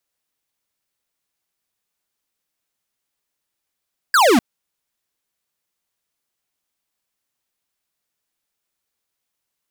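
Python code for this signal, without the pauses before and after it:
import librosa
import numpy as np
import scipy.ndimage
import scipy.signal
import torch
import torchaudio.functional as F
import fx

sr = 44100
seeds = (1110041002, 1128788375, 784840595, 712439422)

y = fx.laser_zap(sr, level_db=-12.5, start_hz=1700.0, end_hz=210.0, length_s=0.25, wave='square')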